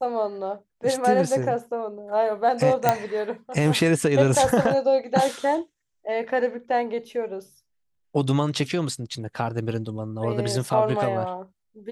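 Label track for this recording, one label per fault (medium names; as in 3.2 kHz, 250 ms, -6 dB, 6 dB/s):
2.890000	2.890000	pop -4 dBFS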